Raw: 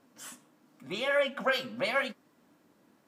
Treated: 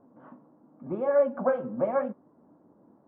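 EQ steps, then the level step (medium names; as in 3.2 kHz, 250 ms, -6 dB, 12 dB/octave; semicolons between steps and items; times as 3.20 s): low-pass 1 kHz 24 dB/octave; distance through air 92 m; +6.5 dB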